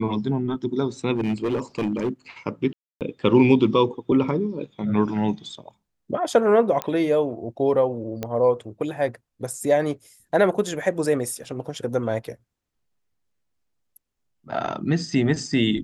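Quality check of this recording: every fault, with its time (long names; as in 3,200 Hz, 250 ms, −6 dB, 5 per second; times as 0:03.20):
0:01.15–0:02.09: clipping −19.5 dBFS
0:02.73–0:03.01: drop-out 278 ms
0:06.82: click −10 dBFS
0:08.23: click −14 dBFS
0:11.44: drop-out 4.1 ms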